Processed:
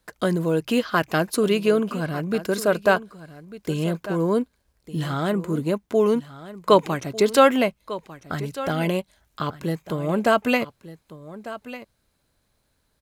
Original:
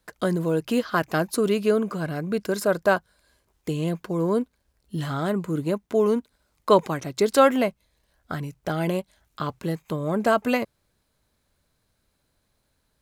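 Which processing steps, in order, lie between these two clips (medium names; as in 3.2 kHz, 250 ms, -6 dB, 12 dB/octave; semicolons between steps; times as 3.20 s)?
dynamic bell 2.8 kHz, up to +5 dB, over -42 dBFS, Q 1.6; on a send: delay 1198 ms -15.5 dB; on the sum: trim +1.5 dB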